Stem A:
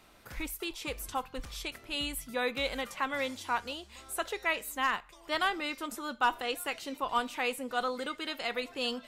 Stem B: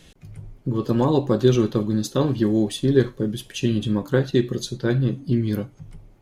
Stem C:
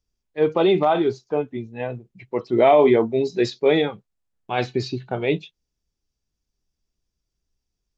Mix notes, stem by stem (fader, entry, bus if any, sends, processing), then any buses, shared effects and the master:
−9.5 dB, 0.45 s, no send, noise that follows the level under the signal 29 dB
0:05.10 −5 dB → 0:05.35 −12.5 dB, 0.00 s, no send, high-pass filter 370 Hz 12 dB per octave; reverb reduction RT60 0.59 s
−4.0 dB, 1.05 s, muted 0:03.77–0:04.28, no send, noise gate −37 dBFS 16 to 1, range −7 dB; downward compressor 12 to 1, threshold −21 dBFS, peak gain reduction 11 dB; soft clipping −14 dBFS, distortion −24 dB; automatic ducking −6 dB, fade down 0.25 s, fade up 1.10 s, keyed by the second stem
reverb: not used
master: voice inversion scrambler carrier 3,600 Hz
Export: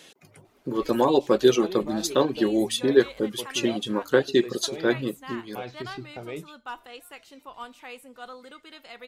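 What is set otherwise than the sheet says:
stem A: missing noise that follows the level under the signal 29 dB
stem B −5.0 dB → +3.5 dB
master: missing voice inversion scrambler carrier 3,600 Hz

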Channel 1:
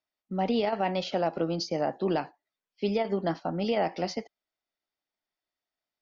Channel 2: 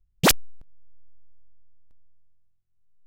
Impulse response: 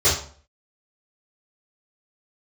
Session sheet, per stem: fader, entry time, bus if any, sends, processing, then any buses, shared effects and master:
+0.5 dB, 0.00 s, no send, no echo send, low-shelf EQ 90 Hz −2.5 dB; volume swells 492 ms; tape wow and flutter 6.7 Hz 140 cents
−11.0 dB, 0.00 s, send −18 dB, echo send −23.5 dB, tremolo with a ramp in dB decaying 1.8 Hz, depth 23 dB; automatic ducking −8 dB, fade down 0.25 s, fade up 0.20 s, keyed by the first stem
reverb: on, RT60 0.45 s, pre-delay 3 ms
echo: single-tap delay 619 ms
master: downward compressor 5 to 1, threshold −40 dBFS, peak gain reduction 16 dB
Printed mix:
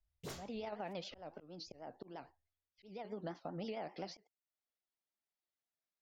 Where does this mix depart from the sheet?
stem 1 +0.5 dB → −9.5 dB
stem 2 −11.0 dB → −18.5 dB

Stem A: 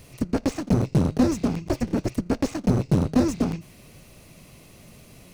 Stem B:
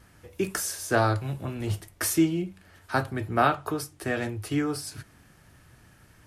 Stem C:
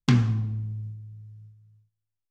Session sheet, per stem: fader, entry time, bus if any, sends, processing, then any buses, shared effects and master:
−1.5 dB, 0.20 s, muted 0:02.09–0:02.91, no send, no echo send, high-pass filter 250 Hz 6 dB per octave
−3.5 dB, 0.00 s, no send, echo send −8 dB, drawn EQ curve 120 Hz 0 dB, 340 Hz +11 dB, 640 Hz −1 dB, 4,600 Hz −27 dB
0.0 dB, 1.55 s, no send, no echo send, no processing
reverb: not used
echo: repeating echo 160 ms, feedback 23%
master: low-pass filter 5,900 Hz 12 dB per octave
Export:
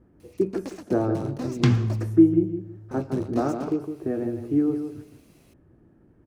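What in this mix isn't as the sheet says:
stem A −1.5 dB → −10.0 dB
master: missing low-pass filter 5,900 Hz 12 dB per octave

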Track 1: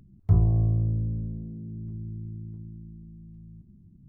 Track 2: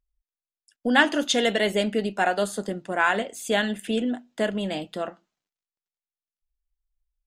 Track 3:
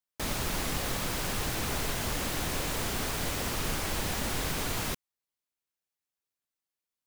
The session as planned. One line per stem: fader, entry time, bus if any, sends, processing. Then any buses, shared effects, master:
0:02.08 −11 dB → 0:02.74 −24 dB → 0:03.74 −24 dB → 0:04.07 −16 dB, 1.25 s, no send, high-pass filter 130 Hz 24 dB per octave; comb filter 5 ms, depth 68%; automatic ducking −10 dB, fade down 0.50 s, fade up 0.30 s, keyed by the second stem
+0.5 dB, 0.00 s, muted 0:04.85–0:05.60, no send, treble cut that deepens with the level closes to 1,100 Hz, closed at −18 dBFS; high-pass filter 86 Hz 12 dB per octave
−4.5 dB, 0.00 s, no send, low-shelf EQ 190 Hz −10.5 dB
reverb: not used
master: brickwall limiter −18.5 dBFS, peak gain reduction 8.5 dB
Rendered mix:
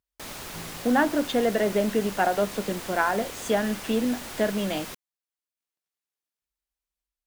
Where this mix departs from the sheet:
stem 1: entry 1.25 s → 0.25 s
master: missing brickwall limiter −18.5 dBFS, peak gain reduction 8.5 dB

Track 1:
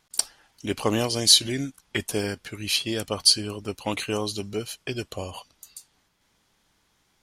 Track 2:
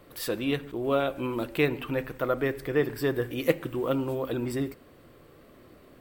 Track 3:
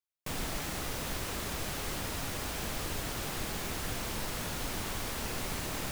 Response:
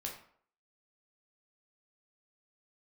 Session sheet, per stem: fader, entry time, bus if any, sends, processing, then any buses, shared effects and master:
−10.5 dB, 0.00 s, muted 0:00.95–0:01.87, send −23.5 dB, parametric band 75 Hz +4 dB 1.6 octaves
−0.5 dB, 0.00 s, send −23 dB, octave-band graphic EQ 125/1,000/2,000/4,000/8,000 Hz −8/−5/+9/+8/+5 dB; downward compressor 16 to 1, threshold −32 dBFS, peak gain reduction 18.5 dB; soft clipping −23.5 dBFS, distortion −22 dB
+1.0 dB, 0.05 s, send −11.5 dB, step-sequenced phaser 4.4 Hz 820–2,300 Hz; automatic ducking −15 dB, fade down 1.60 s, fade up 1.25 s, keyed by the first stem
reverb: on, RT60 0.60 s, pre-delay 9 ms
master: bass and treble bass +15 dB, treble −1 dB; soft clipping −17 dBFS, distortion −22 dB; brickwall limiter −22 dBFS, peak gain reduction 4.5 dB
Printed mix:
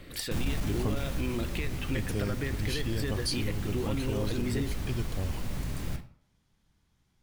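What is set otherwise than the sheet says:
stem 1: missing parametric band 75 Hz +4 dB 1.6 octaves
stem 3: missing step-sequenced phaser 4.4 Hz 820–2,300 Hz

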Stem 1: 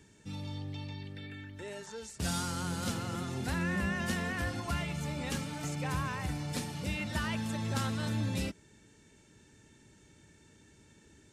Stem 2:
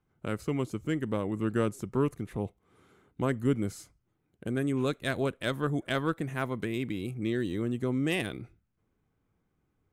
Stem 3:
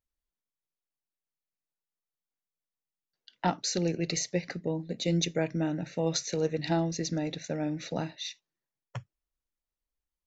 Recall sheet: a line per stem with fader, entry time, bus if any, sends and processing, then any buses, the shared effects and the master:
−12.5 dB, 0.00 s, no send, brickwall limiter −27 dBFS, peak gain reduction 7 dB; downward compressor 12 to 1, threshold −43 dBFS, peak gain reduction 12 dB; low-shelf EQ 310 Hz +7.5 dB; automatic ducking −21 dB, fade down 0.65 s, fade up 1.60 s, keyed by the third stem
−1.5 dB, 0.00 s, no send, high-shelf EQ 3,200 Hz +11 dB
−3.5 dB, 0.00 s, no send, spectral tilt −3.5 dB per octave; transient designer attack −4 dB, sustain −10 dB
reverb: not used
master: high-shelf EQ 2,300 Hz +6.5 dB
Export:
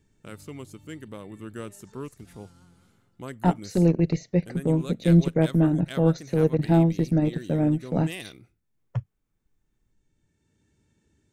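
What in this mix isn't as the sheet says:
stem 2 −1.5 dB → −9.5 dB
stem 3 −3.5 dB → +4.0 dB
master: missing high-shelf EQ 2,300 Hz +6.5 dB

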